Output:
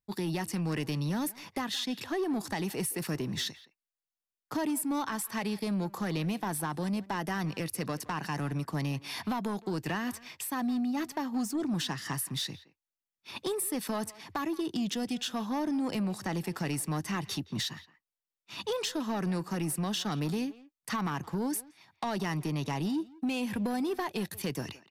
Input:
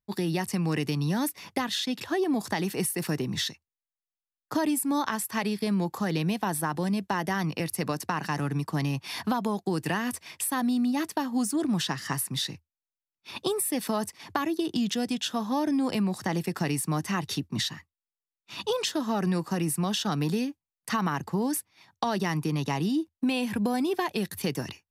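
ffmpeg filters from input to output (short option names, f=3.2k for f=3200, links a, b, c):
-filter_complex "[0:a]asettb=1/sr,asplit=3[a][b][c];[a]atrim=end=9.664[d];[b]atrim=start=9.66:end=11.72,asetpts=PTS-STARTPTS,afade=t=in:d=0.004:c=qsin,afade=t=out:st=2.056:d=0.004:c=qsin,equalizer=f=9.8k:w=2.7:g=-9[e];[c]atrim=start=11.716[f];[d][e]acrossfade=d=0.004:c1=hsin:c2=qsin[g];[g][f]acrossfade=d=0.004:c1=qsin:c2=hsin,asoftclip=type=tanh:threshold=-22.5dB,asplit=2[h][i];[i]adelay=170,highpass=300,lowpass=3.4k,asoftclip=type=hard:threshold=-32dB,volume=-16dB[j];[h][j]amix=inputs=2:normalize=0,volume=-2.5dB"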